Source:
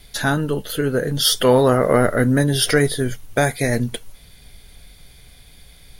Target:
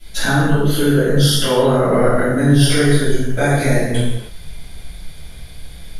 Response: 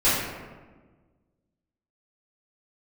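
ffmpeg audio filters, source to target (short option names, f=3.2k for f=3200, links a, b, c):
-filter_complex "[0:a]acompressor=threshold=-21dB:ratio=4[a];[1:a]atrim=start_sample=2205,afade=t=out:st=0.25:d=0.01,atrim=end_sample=11466,asetrate=26460,aresample=44100[b];[a][b]afir=irnorm=-1:irlink=0,volume=-12dB"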